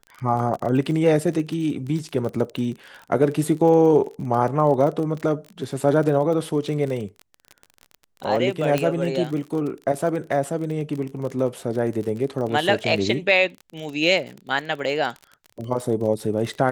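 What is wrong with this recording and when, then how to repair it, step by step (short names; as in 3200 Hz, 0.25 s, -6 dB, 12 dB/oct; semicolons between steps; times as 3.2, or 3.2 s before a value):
crackle 36/s -29 dBFS
8.78 pop -8 dBFS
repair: de-click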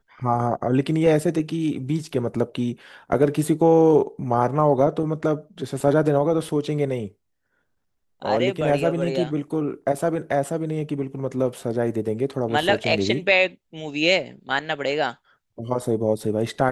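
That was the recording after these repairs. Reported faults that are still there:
none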